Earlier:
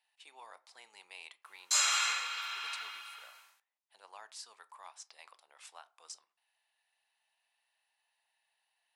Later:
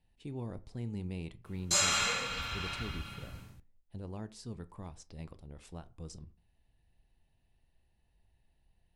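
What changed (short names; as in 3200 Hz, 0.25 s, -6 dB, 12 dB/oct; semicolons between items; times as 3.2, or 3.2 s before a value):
speech -5.0 dB; master: remove HPF 880 Hz 24 dB/oct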